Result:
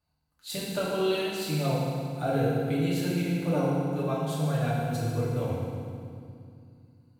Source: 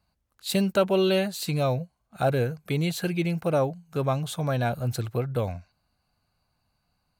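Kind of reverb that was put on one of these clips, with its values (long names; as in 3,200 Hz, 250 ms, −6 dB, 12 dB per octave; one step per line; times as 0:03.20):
feedback delay network reverb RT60 2.3 s, low-frequency decay 1.55×, high-frequency decay 0.85×, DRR −7.5 dB
level −10.5 dB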